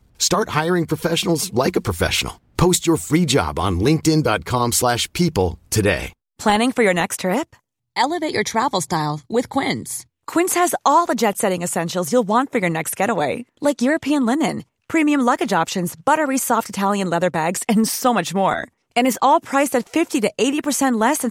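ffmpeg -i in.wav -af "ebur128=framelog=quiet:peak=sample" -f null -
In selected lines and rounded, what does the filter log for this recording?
Integrated loudness:
  I:         -19.1 LUFS
  Threshold: -29.2 LUFS
Loudness range:
  LRA:         1.9 LU
  Threshold: -39.3 LUFS
  LRA low:   -20.3 LUFS
  LRA high:  -18.3 LUFS
Sample peak:
  Peak:       -3.7 dBFS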